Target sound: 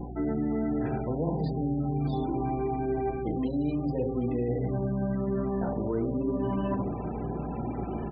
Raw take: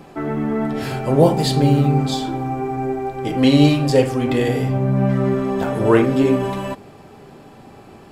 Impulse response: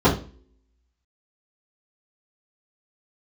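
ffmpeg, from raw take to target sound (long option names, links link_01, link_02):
-filter_complex "[0:a]bandreject=frequency=1100:width=13,asplit=2[link_01][link_02];[1:a]atrim=start_sample=2205,afade=type=out:start_time=0.17:duration=0.01,atrim=end_sample=7938[link_03];[link_02][link_03]afir=irnorm=-1:irlink=0,volume=-27.5dB[link_04];[link_01][link_04]amix=inputs=2:normalize=0,acrossover=split=420|1300[link_05][link_06][link_07];[link_05]acompressor=threshold=-17dB:ratio=4[link_08];[link_06]acompressor=threshold=-24dB:ratio=4[link_09];[link_07]acompressor=threshold=-42dB:ratio=4[link_10];[link_08][link_09][link_10]amix=inputs=3:normalize=0,aecho=1:1:75:0.237,areverse,acompressor=threshold=-32dB:ratio=8,areverse,aeval=exprs='val(0)+0.00631*(sin(2*PI*60*n/s)+sin(2*PI*2*60*n/s)/2+sin(2*PI*3*60*n/s)/3+sin(2*PI*4*60*n/s)/4+sin(2*PI*5*60*n/s)/5)':channel_layout=same,afftfilt=real='re*gte(hypot(re,im),0.00708)':imag='im*gte(hypot(re,im),0.00708)':win_size=1024:overlap=0.75,volume=5dB"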